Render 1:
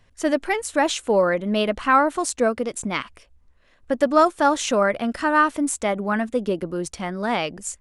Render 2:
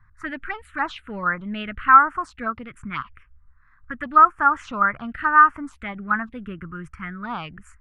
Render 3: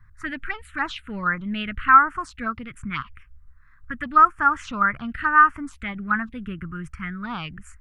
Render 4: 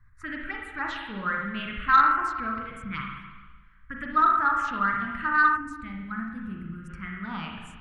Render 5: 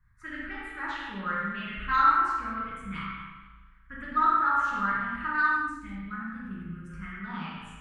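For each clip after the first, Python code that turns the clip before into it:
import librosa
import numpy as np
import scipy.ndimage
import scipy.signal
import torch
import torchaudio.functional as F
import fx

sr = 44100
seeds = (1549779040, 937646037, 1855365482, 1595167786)

y1 = fx.curve_eq(x, sr, hz=(130.0, 210.0, 560.0, 1300.0, 6300.0), db=(0, -10, -22, 6, -26))
y1 = fx.env_phaser(y1, sr, low_hz=490.0, high_hz=3900.0, full_db=-20.5)
y1 = y1 * librosa.db_to_amplitude(4.0)
y2 = fx.peak_eq(y1, sr, hz=670.0, db=-10.0, octaves=2.4)
y2 = y2 * librosa.db_to_amplitude(5.0)
y3 = fx.rev_spring(y2, sr, rt60_s=1.3, pass_ms=(36, 55), chirp_ms=35, drr_db=-0.5)
y3 = fx.spec_box(y3, sr, start_s=5.57, length_s=1.32, low_hz=350.0, high_hz=3800.0, gain_db=-9)
y3 = 10.0 ** (-1.0 / 20.0) * np.tanh(y3 / 10.0 ** (-1.0 / 20.0))
y3 = y3 * librosa.db_to_amplitude(-6.5)
y4 = fx.rev_gated(y3, sr, seeds[0], gate_ms=270, shape='falling', drr_db=-4.0)
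y4 = y4 * librosa.db_to_amplitude(-8.0)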